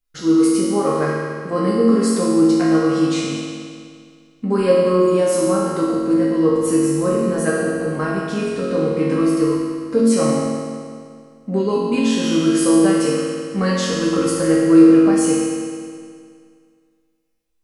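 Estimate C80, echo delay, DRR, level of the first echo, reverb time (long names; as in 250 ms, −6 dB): 0.0 dB, no echo audible, −7.5 dB, no echo audible, 2.1 s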